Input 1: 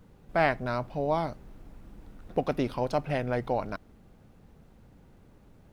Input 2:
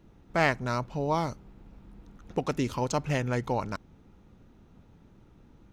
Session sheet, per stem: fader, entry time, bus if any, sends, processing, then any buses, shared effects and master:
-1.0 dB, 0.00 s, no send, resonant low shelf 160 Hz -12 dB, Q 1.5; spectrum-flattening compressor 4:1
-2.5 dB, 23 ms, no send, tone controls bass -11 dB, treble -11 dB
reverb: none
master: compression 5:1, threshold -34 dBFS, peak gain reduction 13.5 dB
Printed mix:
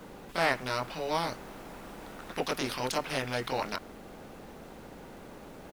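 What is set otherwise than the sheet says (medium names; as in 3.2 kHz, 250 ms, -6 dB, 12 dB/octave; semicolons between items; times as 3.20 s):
stem 1 -1.0 dB -> -7.5 dB; master: missing compression 5:1, threshold -34 dBFS, peak gain reduction 13.5 dB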